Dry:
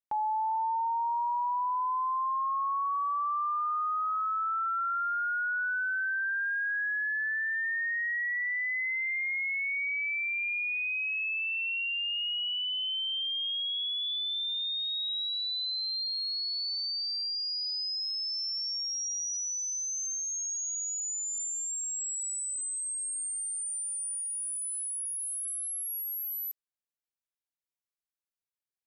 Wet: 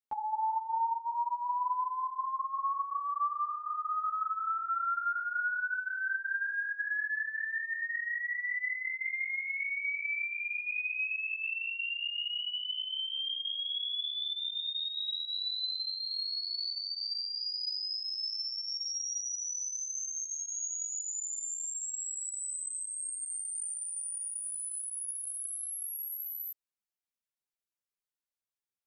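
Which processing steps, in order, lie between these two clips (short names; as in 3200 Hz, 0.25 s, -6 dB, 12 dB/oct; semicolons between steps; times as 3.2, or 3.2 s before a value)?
ensemble effect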